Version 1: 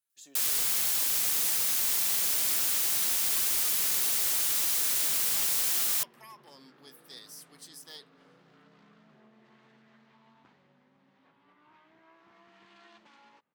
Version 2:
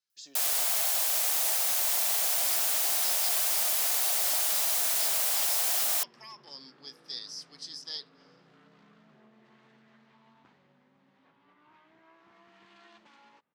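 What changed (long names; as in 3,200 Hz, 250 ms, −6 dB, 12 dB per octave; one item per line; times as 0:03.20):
speech: add low-pass with resonance 5,100 Hz, resonance Q 4.7
first sound: add high-pass with resonance 670 Hz, resonance Q 4.1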